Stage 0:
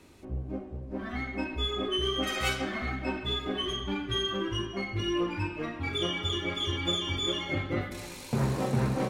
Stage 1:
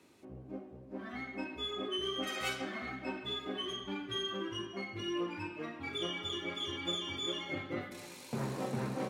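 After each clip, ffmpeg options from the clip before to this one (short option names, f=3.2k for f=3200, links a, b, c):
-af "highpass=160,volume=-6.5dB"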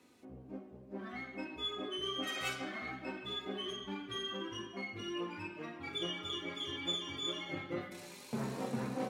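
-af "flanger=delay=4:depth=2.9:regen=51:speed=0.22:shape=sinusoidal,volume=2.5dB"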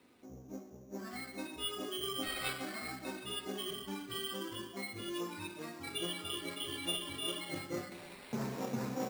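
-af "acrusher=samples=7:mix=1:aa=0.000001"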